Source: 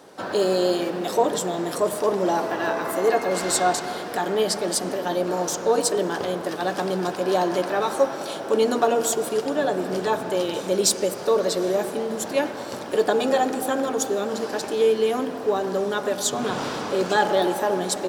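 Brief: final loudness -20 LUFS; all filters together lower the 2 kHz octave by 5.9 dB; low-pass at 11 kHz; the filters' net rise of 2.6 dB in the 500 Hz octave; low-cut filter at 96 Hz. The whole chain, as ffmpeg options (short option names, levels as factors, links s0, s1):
-af "highpass=96,lowpass=11000,equalizer=f=500:t=o:g=3.5,equalizer=f=2000:t=o:g=-8.5,volume=1.26"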